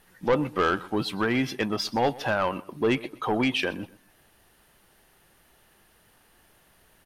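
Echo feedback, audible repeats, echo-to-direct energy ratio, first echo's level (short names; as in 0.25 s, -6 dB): 28%, 2, -20.0 dB, -20.5 dB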